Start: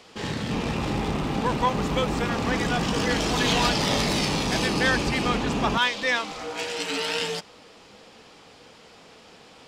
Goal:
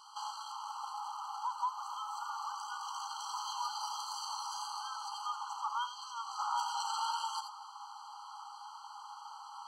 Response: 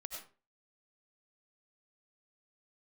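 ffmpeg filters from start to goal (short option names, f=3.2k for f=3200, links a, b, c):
-filter_complex "[0:a]acompressor=threshold=-31dB:ratio=10,asuperstop=centerf=2100:order=12:qfactor=1.2,asetnsamples=n=441:p=0,asendcmd='6.39 equalizer g 13.5',equalizer=f=700:t=o:w=1.9:g=4.5[a];[1:a]atrim=start_sample=2205,atrim=end_sample=3969[b];[a][b]afir=irnorm=-1:irlink=0,afftfilt=real='re*eq(mod(floor(b*sr/1024/810),2),1)':imag='im*eq(mod(floor(b*sr/1024/810),2),1)':win_size=1024:overlap=0.75,volume=4dB"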